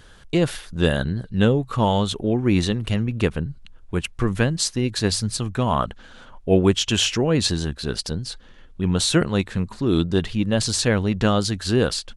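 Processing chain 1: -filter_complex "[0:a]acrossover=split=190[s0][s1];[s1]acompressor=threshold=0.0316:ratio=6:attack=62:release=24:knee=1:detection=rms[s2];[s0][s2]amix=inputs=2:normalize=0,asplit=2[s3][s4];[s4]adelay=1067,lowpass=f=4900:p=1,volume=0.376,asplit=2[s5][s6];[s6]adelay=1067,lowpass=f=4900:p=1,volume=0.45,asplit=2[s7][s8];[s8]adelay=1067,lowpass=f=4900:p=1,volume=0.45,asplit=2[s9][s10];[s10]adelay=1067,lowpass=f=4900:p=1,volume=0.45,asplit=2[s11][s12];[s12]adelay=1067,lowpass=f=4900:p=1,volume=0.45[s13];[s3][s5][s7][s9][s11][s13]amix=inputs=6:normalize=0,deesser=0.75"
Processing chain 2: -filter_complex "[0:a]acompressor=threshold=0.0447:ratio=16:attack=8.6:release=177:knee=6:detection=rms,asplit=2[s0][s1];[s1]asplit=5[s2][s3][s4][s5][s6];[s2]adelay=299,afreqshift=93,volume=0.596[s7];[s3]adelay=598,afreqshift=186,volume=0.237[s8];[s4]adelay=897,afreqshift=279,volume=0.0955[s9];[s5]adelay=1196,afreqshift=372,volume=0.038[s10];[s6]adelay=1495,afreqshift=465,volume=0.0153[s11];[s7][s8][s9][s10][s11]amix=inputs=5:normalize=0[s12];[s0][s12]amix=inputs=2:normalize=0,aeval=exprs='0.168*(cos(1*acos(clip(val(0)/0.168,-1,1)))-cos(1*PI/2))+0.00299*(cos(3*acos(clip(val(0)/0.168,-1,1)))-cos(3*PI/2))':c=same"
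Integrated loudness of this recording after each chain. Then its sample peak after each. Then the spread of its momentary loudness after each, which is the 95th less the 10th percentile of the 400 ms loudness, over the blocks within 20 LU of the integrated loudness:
-25.0 LUFS, -32.5 LUFS; -8.5 dBFS, -16.0 dBFS; 6 LU, 6 LU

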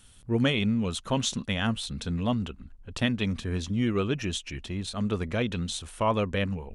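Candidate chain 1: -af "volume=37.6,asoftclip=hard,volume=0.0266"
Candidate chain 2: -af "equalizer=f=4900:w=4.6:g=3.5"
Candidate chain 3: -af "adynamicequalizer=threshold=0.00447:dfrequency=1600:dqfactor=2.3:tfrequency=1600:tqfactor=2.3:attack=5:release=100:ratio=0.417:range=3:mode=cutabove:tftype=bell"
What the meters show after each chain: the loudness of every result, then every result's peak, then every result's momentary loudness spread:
-35.0 LUFS, -29.0 LUFS, -29.0 LUFS; -31.5 dBFS, -12.0 dBFS, -12.0 dBFS; 4 LU, 8 LU, 8 LU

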